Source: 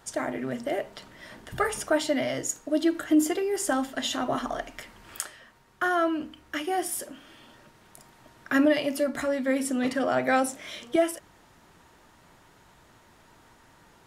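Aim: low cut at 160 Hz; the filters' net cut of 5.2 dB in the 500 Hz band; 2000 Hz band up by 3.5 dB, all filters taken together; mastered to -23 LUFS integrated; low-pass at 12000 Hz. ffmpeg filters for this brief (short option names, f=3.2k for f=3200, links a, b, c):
-af "highpass=160,lowpass=12k,equalizer=f=500:t=o:g=-7.5,equalizer=f=2k:t=o:g=5,volume=6dB"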